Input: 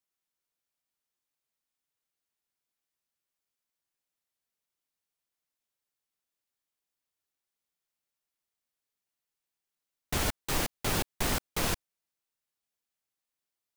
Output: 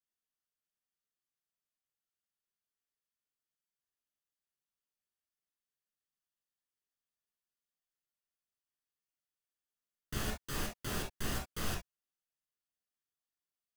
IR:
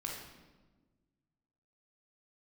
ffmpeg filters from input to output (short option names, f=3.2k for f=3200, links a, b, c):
-filter_complex "[1:a]atrim=start_sample=2205,afade=t=out:st=0.14:d=0.01,atrim=end_sample=6615,asetrate=57330,aresample=44100[a];[0:a][a]afir=irnorm=-1:irlink=0,volume=-5.5dB"